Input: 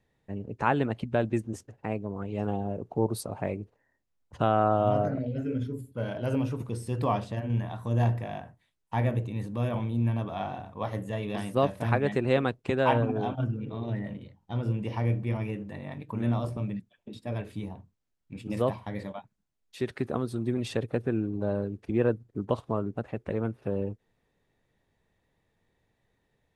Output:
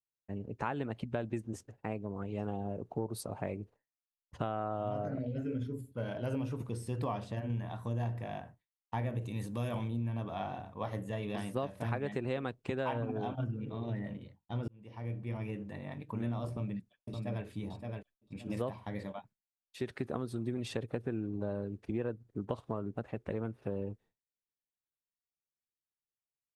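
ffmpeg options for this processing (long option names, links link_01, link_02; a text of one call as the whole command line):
ffmpeg -i in.wav -filter_complex "[0:a]asettb=1/sr,asplit=3[link_01][link_02][link_03];[link_01]atrim=end=9.214[link_04];[link_02]atrim=start=9.21:end=9.88,asetpts=PTS-STARTPTS,afade=type=in:duration=0.004:curve=qsin,afade=type=out:start_time=0.666:duration=0.004:curve=qsin,highshelf=frequency=3800:gain=11.5[link_05];[link_03]atrim=start=9.876[link_06];[link_04][link_05]acrossfade=duration=0.004:curve1=hsin:curve2=qsin[link_07];[link_07][link_06]acrossfade=duration=0.004:curve1=qsin:curve2=hsin,asplit=2[link_08][link_09];[link_09]afade=type=in:start_time=16.5:duration=0.01,afade=type=out:start_time=17.45:duration=0.01,aecho=0:1:570|1140|1710:0.595662|0.148916|0.0372289[link_10];[link_08][link_10]amix=inputs=2:normalize=0,asplit=2[link_11][link_12];[link_11]atrim=end=14.68,asetpts=PTS-STARTPTS,afade=type=out:start_time=14.676:duration=0.004:curve=hsin[link_13];[link_12]atrim=start=14.68,asetpts=PTS-STARTPTS,afade=type=in:duration=0.99[link_14];[link_13][link_14]concat=n=2:v=0:a=1,agate=range=-33dB:threshold=-49dB:ratio=3:detection=peak,acompressor=threshold=-27dB:ratio=6,volume=-4dB" out.wav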